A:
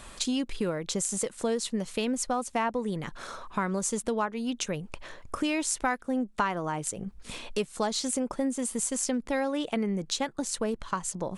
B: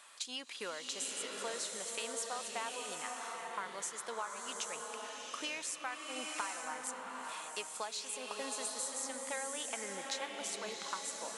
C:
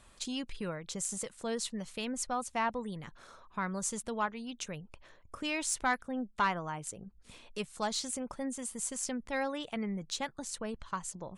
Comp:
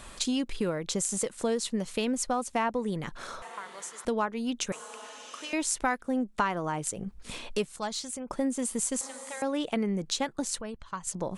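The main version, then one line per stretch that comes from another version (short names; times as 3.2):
A
3.42–4.05 from B
4.72–5.53 from B
7.76–8.28 from C
9.01–9.42 from B
10.61–11.07 from C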